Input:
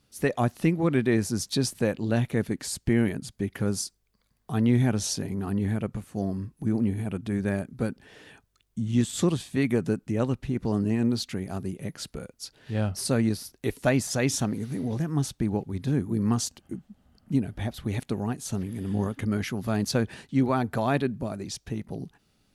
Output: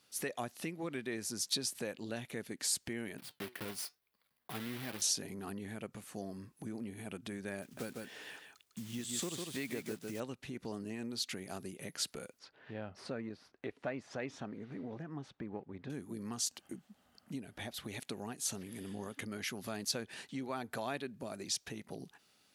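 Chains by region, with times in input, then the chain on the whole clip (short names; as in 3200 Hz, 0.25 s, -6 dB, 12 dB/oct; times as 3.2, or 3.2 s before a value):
3.18–5.02 block floating point 3-bit + bell 6900 Hz -12.5 dB 0.89 oct + flange 1.1 Hz, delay 5.5 ms, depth 3.5 ms, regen +80%
7.62–10.22 block floating point 5-bit + echo 0.151 s -6.5 dB
12.39–15.9 half-wave gain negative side -3 dB + LPF 1800 Hz
whole clip: compressor 3:1, threshold -32 dBFS; dynamic EQ 1100 Hz, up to -5 dB, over -49 dBFS, Q 0.78; HPF 840 Hz 6 dB/oct; gain +2.5 dB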